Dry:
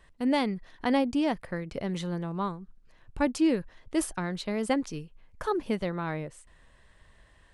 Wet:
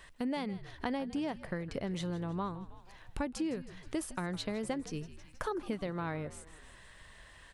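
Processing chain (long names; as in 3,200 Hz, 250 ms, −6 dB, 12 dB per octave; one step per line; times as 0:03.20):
downward compressor 5 to 1, threshold −33 dBFS, peak gain reduction 12 dB
on a send: echo with shifted repeats 159 ms, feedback 51%, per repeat −69 Hz, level −16.5 dB
on the sum: one half of a high-frequency compander encoder only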